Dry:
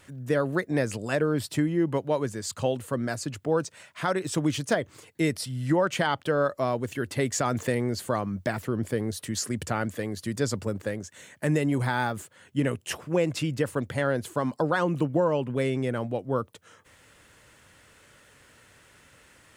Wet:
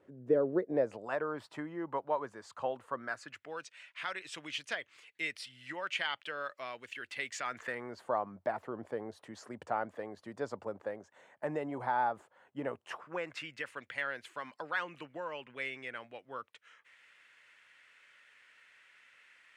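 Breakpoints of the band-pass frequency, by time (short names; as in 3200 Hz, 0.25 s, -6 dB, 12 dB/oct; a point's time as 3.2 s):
band-pass, Q 2
0.61 s 420 Hz
1.15 s 1000 Hz
2.89 s 1000 Hz
3.58 s 2500 Hz
7.35 s 2500 Hz
8.08 s 810 Hz
12.7 s 810 Hz
13.55 s 2200 Hz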